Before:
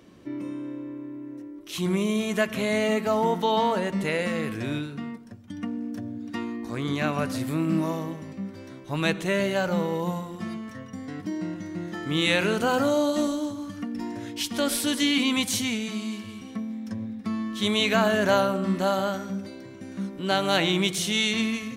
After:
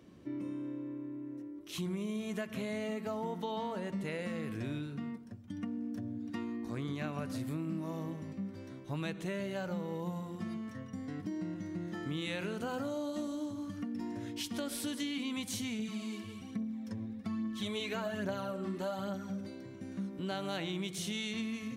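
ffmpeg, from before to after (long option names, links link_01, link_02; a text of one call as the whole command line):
ffmpeg -i in.wav -filter_complex "[0:a]asettb=1/sr,asplit=3[link_01][link_02][link_03];[link_01]atrim=end=15.794[link_04];[link_02]atrim=start=15.79:end=19.41,asetpts=PTS-STARTPTS,afade=type=in:duration=0.004:curve=qsin,afade=type=out:start_time=3.616:duration=0.004:curve=qsin,aphaser=in_gain=1:out_gain=1:delay=3:decay=0.5:speed=1.2:type=triangular[link_05];[link_03]atrim=start=19.406[link_06];[link_04][link_05]acrossfade=duration=0.004:curve1=hsin:curve2=qsin[link_07];[link_07][link_06]acrossfade=duration=0.004:curve1=qsin:curve2=hsin,highpass=53,lowshelf=frequency=320:gain=6.5,acompressor=threshold=-26dB:ratio=5,volume=-8.5dB" out.wav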